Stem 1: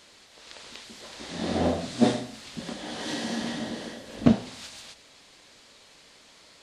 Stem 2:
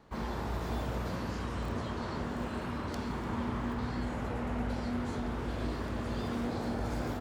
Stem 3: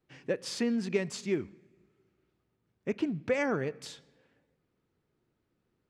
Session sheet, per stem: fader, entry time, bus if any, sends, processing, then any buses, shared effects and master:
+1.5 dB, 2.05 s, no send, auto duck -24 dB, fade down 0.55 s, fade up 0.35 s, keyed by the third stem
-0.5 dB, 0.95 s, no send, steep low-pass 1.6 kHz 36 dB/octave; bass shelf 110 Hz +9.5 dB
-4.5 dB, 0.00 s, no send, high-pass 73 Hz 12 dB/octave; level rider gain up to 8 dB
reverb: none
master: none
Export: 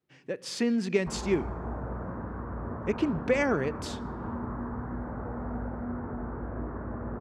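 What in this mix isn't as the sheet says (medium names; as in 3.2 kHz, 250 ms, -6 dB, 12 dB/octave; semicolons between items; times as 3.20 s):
stem 1: muted; stem 2: missing bass shelf 110 Hz +9.5 dB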